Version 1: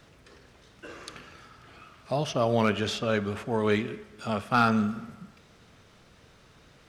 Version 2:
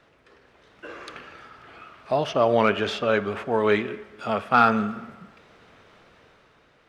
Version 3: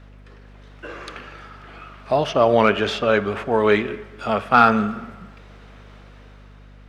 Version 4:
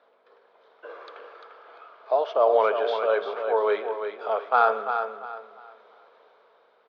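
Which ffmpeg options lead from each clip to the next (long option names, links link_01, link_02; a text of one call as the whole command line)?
ffmpeg -i in.wav -af "bass=frequency=250:gain=-10,treble=frequency=4000:gain=-13,dynaudnorm=framelen=110:gausssize=13:maxgain=6.5dB" out.wav
ffmpeg -i in.wav -af "aeval=exprs='val(0)+0.00398*(sin(2*PI*50*n/s)+sin(2*PI*2*50*n/s)/2+sin(2*PI*3*50*n/s)/3+sin(2*PI*4*50*n/s)/4+sin(2*PI*5*50*n/s)/5)':channel_layout=same,volume=4dB" out.wav
ffmpeg -i in.wav -af "highpass=frequency=450:width=0.5412,highpass=frequency=450:width=1.3066,equalizer=frequency=460:width_type=q:width=4:gain=7,equalizer=frequency=670:width_type=q:width=4:gain=4,equalizer=frequency=970:width_type=q:width=4:gain=4,equalizer=frequency=1900:width_type=q:width=4:gain=-8,equalizer=frequency=2700:width_type=q:width=4:gain=-10,lowpass=frequency=3900:width=0.5412,lowpass=frequency=3900:width=1.3066,aecho=1:1:346|692|1038|1384:0.422|0.122|0.0355|0.0103,volume=-7dB" out.wav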